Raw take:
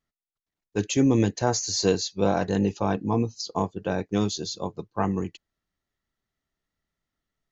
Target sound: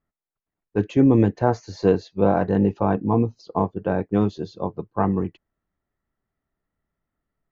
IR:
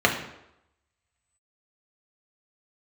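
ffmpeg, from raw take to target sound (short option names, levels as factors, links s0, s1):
-af "lowpass=1500,volume=1.68"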